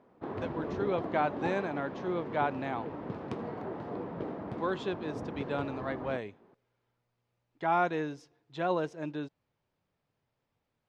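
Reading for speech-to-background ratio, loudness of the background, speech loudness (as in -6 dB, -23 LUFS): 5.0 dB, -39.5 LUFS, -34.5 LUFS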